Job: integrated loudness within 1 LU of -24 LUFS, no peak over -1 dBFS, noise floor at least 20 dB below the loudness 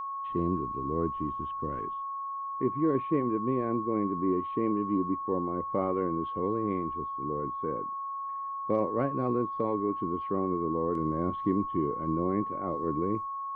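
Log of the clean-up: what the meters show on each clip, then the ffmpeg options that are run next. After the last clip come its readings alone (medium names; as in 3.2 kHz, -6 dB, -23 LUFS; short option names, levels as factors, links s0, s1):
steady tone 1.1 kHz; tone level -33 dBFS; loudness -31.0 LUFS; peak level -14.5 dBFS; loudness target -24.0 LUFS
-> -af "bandreject=f=1100:w=30"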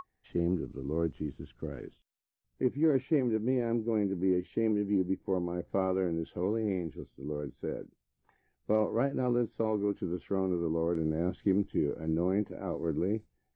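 steady tone not found; loudness -32.0 LUFS; peak level -15.5 dBFS; loudness target -24.0 LUFS
-> -af "volume=2.51"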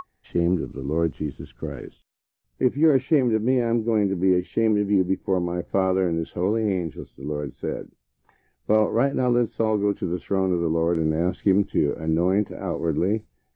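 loudness -24.0 LUFS; peak level -7.5 dBFS; noise floor -73 dBFS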